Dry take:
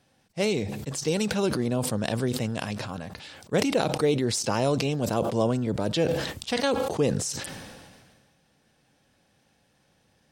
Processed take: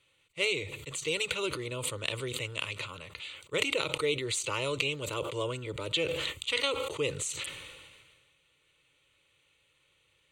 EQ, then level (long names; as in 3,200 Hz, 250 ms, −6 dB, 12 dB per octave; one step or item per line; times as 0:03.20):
flat-topped bell 3,400 Hz +12 dB 2.9 octaves
phaser with its sweep stopped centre 1,100 Hz, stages 8
−6.5 dB